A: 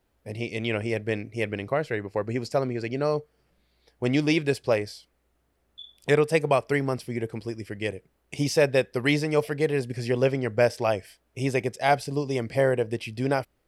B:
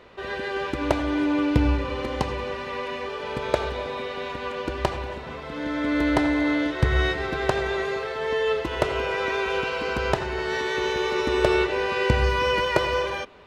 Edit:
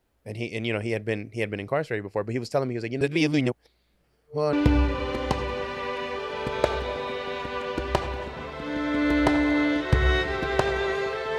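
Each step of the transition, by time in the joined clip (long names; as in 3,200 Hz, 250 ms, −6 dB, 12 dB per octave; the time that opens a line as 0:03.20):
A
0:03.01–0:04.53: reverse
0:04.53: continue with B from 0:01.43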